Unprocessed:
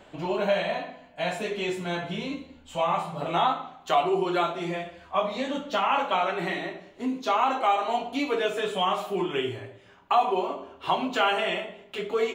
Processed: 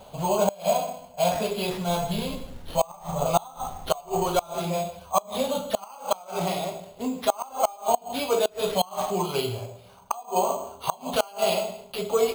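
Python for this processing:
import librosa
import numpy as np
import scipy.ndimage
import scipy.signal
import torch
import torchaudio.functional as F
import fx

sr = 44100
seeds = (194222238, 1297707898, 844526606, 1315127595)

y = fx.peak_eq(x, sr, hz=250.0, db=4.5, octaves=1.3)
y = fx.fixed_phaser(y, sr, hz=750.0, stages=4)
y = fx.dmg_noise_colour(y, sr, seeds[0], colour='brown', level_db=-47.0, at=(1.88, 4.48), fade=0.02)
y = fx.high_shelf(y, sr, hz=5700.0, db=2.5)
y = y + 10.0 ** (-17.5 / 20.0) * np.pad(y, (int(152 * sr / 1000.0), 0))[:len(y)]
y = fx.gate_flip(y, sr, shuts_db=-16.0, range_db=-26)
y = np.repeat(y[::6], 6)[:len(y)]
y = F.gain(torch.from_numpy(y), 7.0).numpy()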